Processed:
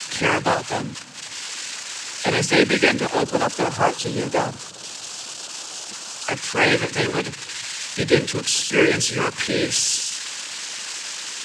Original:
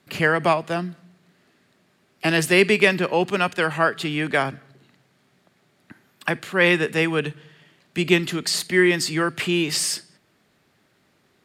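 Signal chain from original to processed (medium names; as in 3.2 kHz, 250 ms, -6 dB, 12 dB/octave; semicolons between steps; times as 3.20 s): zero-crossing glitches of -15 dBFS; 3.24–6.29 s: graphic EQ 500/1000/2000 Hz +4/+4/-11 dB; noise-vocoded speech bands 8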